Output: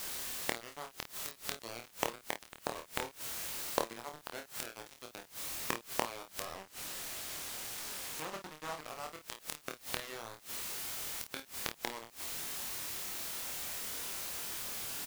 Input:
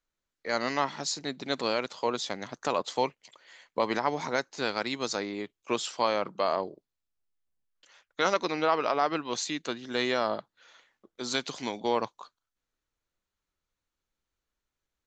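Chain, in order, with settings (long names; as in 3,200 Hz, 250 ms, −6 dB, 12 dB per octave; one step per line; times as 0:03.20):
high-pass filter 79 Hz 24 dB per octave
low-pass that shuts in the quiet parts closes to 760 Hz, open at −26 dBFS
low-pass filter 4,300 Hz 12 dB per octave
transient designer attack +2 dB, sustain −3 dB
bit reduction 4 bits
background noise white −47 dBFS
gate with flip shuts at −24 dBFS, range −24 dB
ambience of single reflections 26 ms −4.5 dB, 52 ms −10 dB
0:06.55–0:08.81: highs frequency-modulated by the lows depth 0.34 ms
level +4.5 dB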